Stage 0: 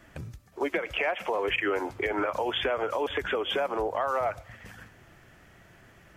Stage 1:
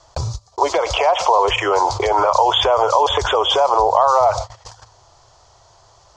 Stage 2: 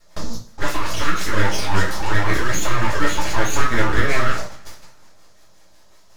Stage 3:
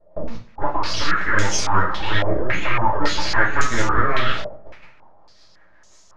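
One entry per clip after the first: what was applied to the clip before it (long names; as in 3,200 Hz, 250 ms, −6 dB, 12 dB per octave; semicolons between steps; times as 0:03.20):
noise gate −41 dBFS, range −44 dB; drawn EQ curve 110 Hz 0 dB, 220 Hz −23 dB, 430 Hz −2 dB, 1,000 Hz +11 dB, 1,700 Hz −13 dB, 2,600 Hz −9 dB, 4,400 Hz +14 dB, 6,900 Hz +11 dB, 13,000 Hz −27 dB; envelope flattener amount 50%; level +8.5 dB
rotating-speaker cabinet horn 5.5 Hz; full-wave rectification; coupled-rooms reverb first 0.35 s, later 2 s, from −27 dB, DRR −6 dB; level −5.5 dB
low-pass on a step sequencer 3.6 Hz 610–6,700 Hz; level −2.5 dB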